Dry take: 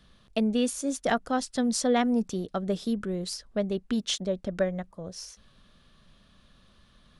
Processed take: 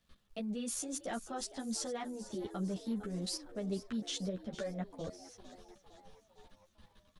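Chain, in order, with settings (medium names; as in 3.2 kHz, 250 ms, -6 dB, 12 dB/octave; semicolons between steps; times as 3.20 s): level held to a coarse grid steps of 19 dB; crackle 330 per s -65 dBFS; frequency-shifting echo 456 ms, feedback 56%, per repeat +86 Hz, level -15 dB; three-phase chorus; trim +2.5 dB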